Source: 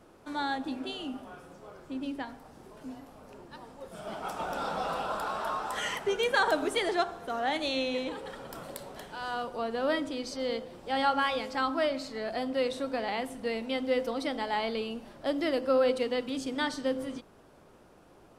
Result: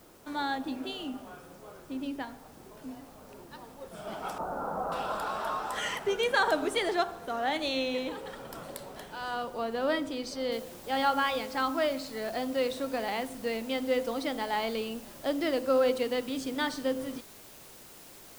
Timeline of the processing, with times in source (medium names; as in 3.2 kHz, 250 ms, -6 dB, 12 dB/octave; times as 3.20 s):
4.38–4.92 s: low-pass 1.3 kHz 24 dB/octave
10.52 s: noise floor step -62 dB -52 dB